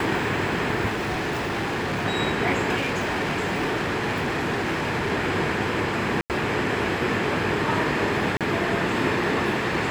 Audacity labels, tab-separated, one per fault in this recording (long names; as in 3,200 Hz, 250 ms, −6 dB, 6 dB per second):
0.890000	2.060000	clipping −23.5 dBFS
2.760000	5.120000	clipping −21.5 dBFS
6.210000	6.300000	drop-out 88 ms
8.370000	8.410000	drop-out 37 ms